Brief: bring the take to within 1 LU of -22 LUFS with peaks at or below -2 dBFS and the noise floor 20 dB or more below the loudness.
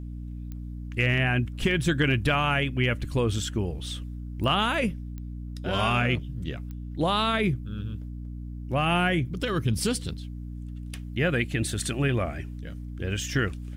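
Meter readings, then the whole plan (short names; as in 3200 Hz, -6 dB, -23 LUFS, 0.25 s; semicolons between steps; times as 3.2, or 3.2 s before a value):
clicks 4; hum 60 Hz; harmonics up to 300 Hz; hum level -33 dBFS; loudness -27.0 LUFS; peak -11.0 dBFS; loudness target -22.0 LUFS
-> de-click; notches 60/120/180/240/300 Hz; gain +5 dB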